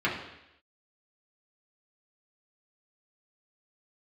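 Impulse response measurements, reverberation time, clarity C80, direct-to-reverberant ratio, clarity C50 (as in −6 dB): 0.85 s, 8.5 dB, −6.5 dB, 5.5 dB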